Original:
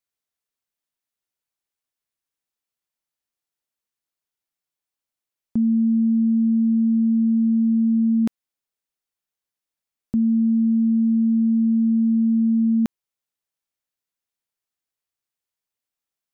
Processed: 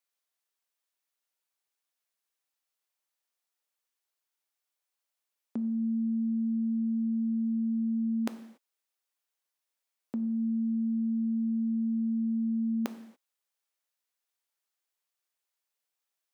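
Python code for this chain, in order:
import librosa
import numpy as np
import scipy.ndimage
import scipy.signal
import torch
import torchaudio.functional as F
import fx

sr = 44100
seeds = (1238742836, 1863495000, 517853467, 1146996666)

y = scipy.signal.sosfilt(scipy.signal.butter(2, 450.0, 'highpass', fs=sr, output='sos'), x)
y = fx.rev_gated(y, sr, seeds[0], gate_ms=310, shape='falling', drr_db=9.5)
y = y * 10.0 ** (1.0 / 20.0)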